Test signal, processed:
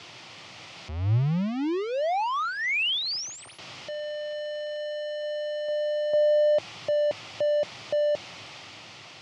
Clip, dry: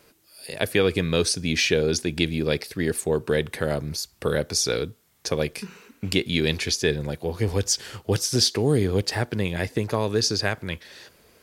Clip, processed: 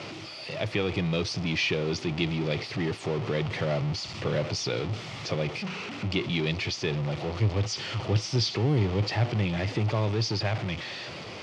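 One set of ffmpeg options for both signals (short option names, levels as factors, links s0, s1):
-af "aeval=exprs='val(0)+0.5*0.0841*sgn(val(0))':c=same,dynaudnorm=f=190:g=9:m=1.41,highpass=f=100:w=0.5412,highpass=f=100:w=1.3066,equalizer=f=110:t=q:w=4:g=6,equalizer=f=240:t=q:w=4:g=-7,equalizer=f=450:t=q:w=4:g=-8,equalizer=f=1000:t=q:w=4:g=-3,equalizer=f=1600:t=q:w=4:g=-10,equalizer=f=3900:t=q:w=4:g=-5,lowpass=f=4500:w=0.5412,lowpass=f=4500:w=1.3066,volume=0.473"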